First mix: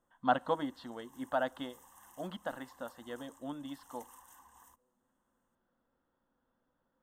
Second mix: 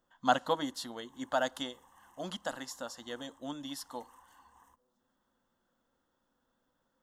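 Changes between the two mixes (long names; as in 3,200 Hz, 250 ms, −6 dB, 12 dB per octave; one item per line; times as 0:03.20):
speech: remove high-frequency loss of the air 410 metres
background: add low-pass filter 2,700 Hz 6 dB per octave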